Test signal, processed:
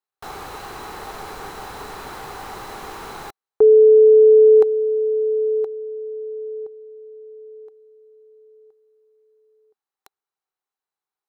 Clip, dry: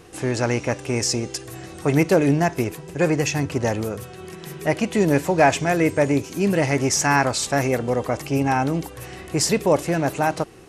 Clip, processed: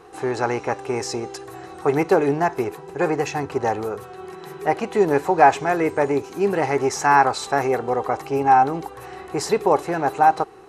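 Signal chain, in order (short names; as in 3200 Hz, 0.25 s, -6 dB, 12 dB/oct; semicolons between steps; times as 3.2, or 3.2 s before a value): bell 1200 Hz +12.5 dB 1.4 oct; small resonant body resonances 410/780/4000 Hz, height 12 dB, ringing for 30 ms; gain -9 dB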